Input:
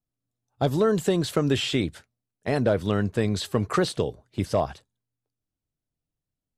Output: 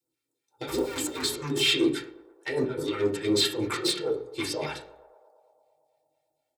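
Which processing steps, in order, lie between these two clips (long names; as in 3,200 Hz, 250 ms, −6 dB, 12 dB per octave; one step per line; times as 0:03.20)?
0:00.67–0:01.24: sub-harmonics by changed cycles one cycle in 2, inverted
high-pass filter 77 Hz
low shelf with overshoot 230 Hz −8.5 dB, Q 1.5
mains-hum notches 60/120/180/240/300/360/420 Hz
comb filter 2.2 ms, depth 77%
compressor whose output falls as the input rises −25 dBFS, ratio −0.5
soft clipping −23 dBFS, distortion −11 dB
all-pass phaser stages 2, 4 Hz, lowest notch 360–2,600 Hz
feedback echo with a band-pass in the loop 112 ms, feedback 81%, band-pass 690 Hz, level −17 dB
convolution reverb RT60 0.40 s, pre-delay 3 ms, DRR −3.5 dB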